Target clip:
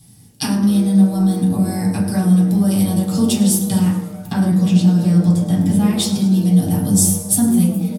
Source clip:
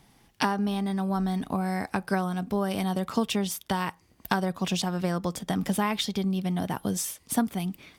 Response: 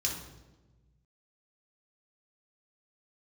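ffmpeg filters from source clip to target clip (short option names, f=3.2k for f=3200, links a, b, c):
-filter_complex "[0:a]asettb=1/sr,asplit=3[a][b][c];[a]atrim=end=3.794[d];[b]atrim=start=3.79:end=5.96,asetpts=PTS-STARTPTS,afade=t=in:d=0.004:c=qsin,afade=t=out:st=2.166:d=0.004:c=qsin,acrossover=split=3300[e][f];[f]acompressor=threshold=-48dB:ratio=4:attack=1:release=60[g];[e][g]amix=inputs=2:normalize=0[h];[c]atrim=start=5.956[i];[d][h]acrossfade=d=0.004:c1=hsin:c2=qsin[j];[j][i]acrossfade=d=0.004:c1=qsin:c2=hsin,bass=f=250:g=13,treble=f=4k:g=14,asplit=8[k][l][m][n][o][p][q][r];[l]adelay=107,afreqshift=140,volume=-16dB[s];[m]adelay=214,afreqshift=280,volume=-19.9dB[t];[n]adelay=321,afreqshift=420,volume=-23.8dB[u];[o]adelay=428,afreqshift=560,volume=-27.6dB[v];[p]adelay=535,afreqshift=700,volume=-31.5dB[w];[q]adelay=642,afreqshift=840,volume=-35.4dB[x];[r]adelay=749,afreqshift=980,volume=-39.3dB[y];[k][s][t][u][v][w][x][y]amix=inputs=8:normalize=0[z];[1:a]atrim=start_sample=2205,asetrate=70560,aresample=44100[aa];[z][aa]afir=irnorm=-1:irlink=0,volume=-1dB"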